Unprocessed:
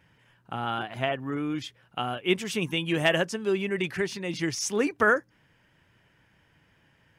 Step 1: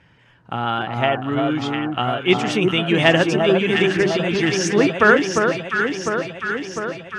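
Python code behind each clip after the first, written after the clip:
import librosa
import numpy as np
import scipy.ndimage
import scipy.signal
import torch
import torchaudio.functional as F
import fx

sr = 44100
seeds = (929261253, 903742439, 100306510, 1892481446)

y = scipy.signal.sosfilt(scipy.signal.butter(2, 5800.0, 'lowpass', fs=sr, output='sos'), x)
y = fx.echo_alternate(y, sr, ms=351, hz=1300.0, feedback_pct=80, wet_db=-3)
y = y * 10.0 ** (8.0 / 20.0)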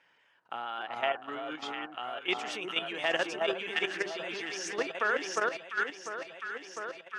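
y = scipy.signal.sosfilt(scipy.signal.butter(2, 550.0, 'highpass', fs=sr, output='sos'), x)
y = fx.level_steps(y, sr, step_db=10)
y = y * 10.0 ** (-7.5 / 20.0)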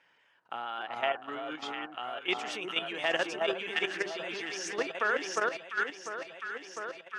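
y = x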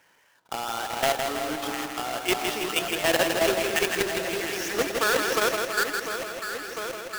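y = fx.halfwave_hold(x, sr)
y = fx.echo_crushed(y, sr, ms=162, feedback_pct=55, bits=9, wet_db=-5.0)
y = y * 10.0 ** (2.0 / 20.0)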